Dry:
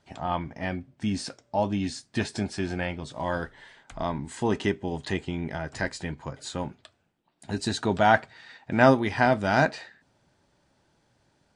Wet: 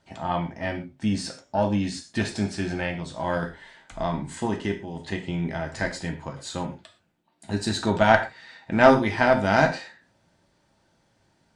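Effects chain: 4.45–5.28 s: level held to a coarse grid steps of 9 dB; gated-style reverb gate 150 ms falling, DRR 2.5 dB; Chebyshev shaper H 4 -19 dB, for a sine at -2 dBFS

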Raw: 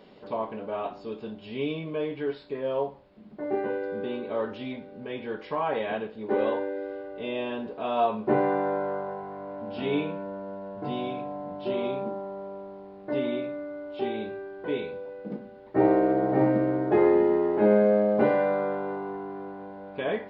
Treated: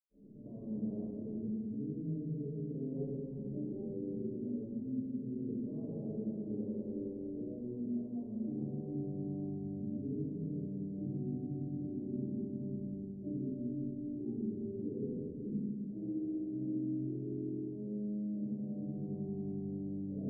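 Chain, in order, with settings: reverse; compression 5:1, threshold -32 dBFS, peak gain reduction 15 dB; reverse; inverse Chebyshev low-pass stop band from 1.8 kHz, stop band 80 dB; peaking EQ 140 Hz +5.5 dB 0.32 oct; reverberation RT60 3.1 s, pre-delay 95 ms; gain riding within 5 dB 0.5 s; trim +6.5 dB

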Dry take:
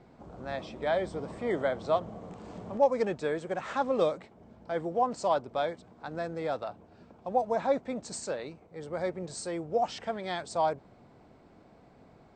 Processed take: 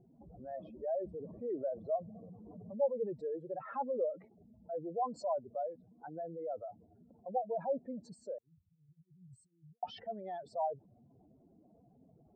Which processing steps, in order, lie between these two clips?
spectral contrast enhancement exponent 2.8; 8.38–9.83 s: elliptic band-stop 130–7400 Hz, stop band 60 dB; level-controlled noise filter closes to 1.9 kHz, open at -24 dBFS; trim -7 dB

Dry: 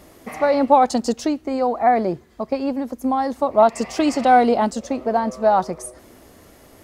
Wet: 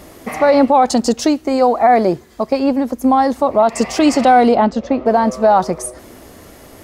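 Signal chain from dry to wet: 1.22–2.60 s: tone controls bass -3 dB, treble +5 dB; peak limiter -11.5 dBFS, peak gain reduction 9.5 dB; 4.55–5.06 s: distance through air 210 m; trim +8 dB

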